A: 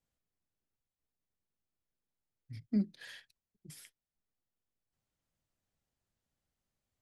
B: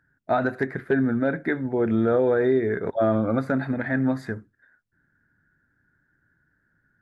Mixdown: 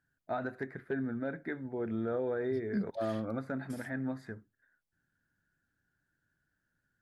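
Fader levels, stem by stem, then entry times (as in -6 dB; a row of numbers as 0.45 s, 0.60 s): -3.0 dB, -13.0 dB; 0.00 s, 0.00 s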